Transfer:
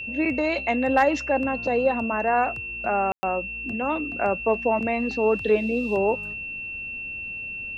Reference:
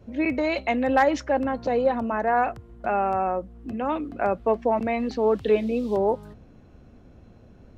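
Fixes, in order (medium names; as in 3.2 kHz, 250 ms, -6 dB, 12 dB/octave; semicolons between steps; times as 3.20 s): band-stop 2.7 kHz, Q 30; room tone fill 3.12–3.23 s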